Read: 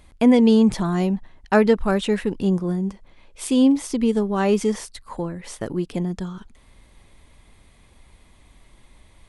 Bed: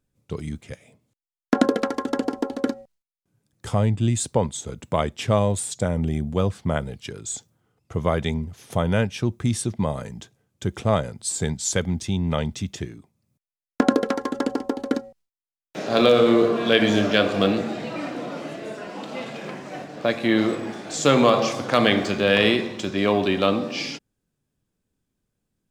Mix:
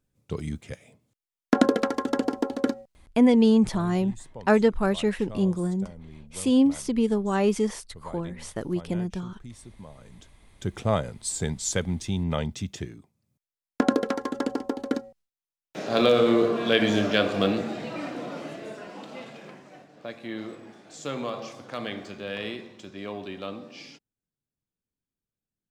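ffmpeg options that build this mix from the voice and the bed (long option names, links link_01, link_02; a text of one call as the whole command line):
ffmpeg -i stem1.wav -i stem2.wav -filter_complex "[0:a]adelay=2950,volume=-3.5dB[link_01];[1:a]volume=16.5dB,afade=type=out:start_time=2.76:duration=0.69:silence=0.1,afade=type=in:start_time=9.96:duration=0.79:silence=0.133352,afade=type=out:start_time=18.42:duration=1.41:silence=0.251189[link_02];[link_01][link_02]amix=inputs=2:normalize=0" out.wav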